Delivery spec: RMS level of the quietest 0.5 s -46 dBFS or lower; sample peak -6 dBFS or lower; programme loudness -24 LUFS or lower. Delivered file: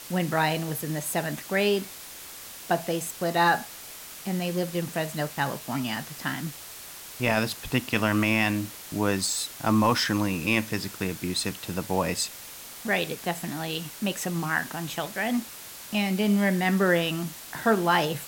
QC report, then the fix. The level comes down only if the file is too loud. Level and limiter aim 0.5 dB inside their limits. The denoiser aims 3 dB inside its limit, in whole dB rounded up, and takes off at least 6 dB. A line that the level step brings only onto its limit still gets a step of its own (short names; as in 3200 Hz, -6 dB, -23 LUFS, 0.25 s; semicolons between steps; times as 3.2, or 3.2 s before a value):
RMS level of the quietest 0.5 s -43 dBFS: fail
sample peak -10.0 dBFS: OK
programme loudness -27.0 LUFS: OK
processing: denoiser 6 dB, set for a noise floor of -43 dBFS